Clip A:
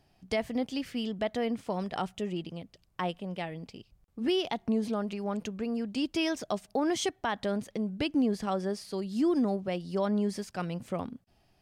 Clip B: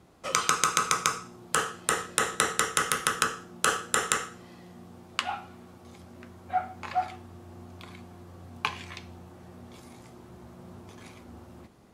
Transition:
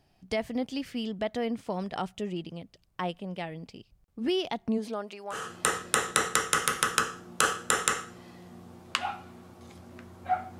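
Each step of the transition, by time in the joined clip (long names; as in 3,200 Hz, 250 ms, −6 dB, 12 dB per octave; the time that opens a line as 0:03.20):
clip A
0:04.77–0:05.46: high-pass filter 240 Hz → 870 Hz
0:05.38: continue with clip B from 0:01.62, crossfade 0.16 s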